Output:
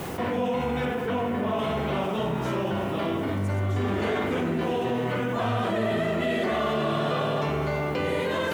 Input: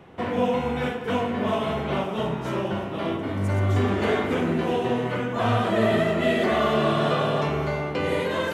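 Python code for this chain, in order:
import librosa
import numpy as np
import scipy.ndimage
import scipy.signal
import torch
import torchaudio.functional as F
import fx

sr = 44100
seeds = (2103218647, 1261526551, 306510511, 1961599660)

y = fx.lowpass(x, sr, hz=2600.0, slope=6, at=(0.85, 1.59))
y = fx.quant_dither(y, sr, seeds[0], bits=10, dither='triangular')
y = fx.env_flatten(y, sr, amount_pct=70)
y = y * librosa.db_to_amplitude(-6.0)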